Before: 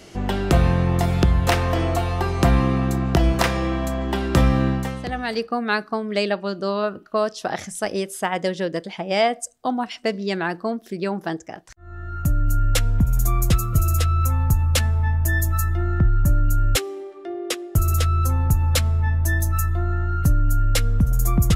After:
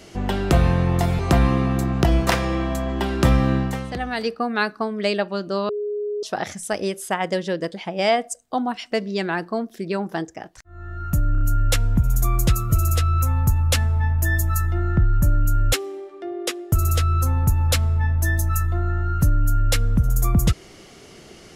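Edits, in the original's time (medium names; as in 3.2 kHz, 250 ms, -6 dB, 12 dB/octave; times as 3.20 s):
1.19–2.31 s: delete
6.81–7.35 s: bleep 415 Hz -23 dBFS
12.44 s: stutter 0.03 s, 4 plays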